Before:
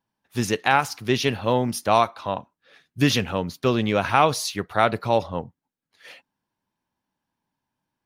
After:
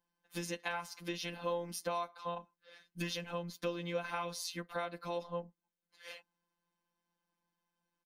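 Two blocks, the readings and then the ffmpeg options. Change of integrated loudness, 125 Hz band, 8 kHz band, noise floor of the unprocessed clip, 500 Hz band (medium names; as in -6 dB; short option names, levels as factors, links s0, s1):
-17.5 dB, -19.0 dB, -13.5 dB, -85 dBFS, -16.0 dB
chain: -af "afftfilt=real='hypot(re,im)*cos(PI*b)':imag='0':win_size=1024:overlap=0.75,acompressor=threshold=0.0178:ratio=4,aecho=1:1:3.9:0.95,volume=0.668"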